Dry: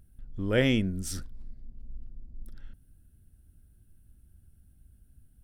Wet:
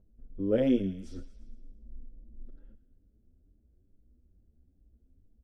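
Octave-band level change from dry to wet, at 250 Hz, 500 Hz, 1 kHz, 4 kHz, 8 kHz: +0.5 dB, +0.5 dB, can't be measured, −14.5 dB, below −20 dB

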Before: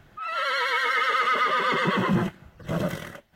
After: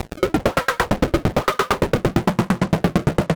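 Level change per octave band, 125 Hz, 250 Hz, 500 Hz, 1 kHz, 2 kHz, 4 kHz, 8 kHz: +10.5, +9.5, +10.0, +1.5, −1.0, +0.5, +11.5 decibels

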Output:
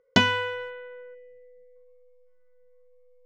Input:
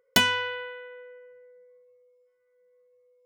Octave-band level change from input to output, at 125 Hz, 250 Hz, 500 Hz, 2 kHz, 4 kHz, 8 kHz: +8.0 dB, +6.5 dB, +3.5 dB, +0.5 dB, −1.5 dB, can't be measured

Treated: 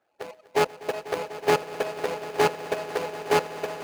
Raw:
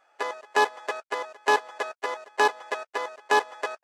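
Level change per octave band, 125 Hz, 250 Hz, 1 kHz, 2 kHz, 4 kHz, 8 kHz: can't be measured, +7.5 dB, −3.0 dB, −5.0 dB, −0.5 dB, +1.0 dB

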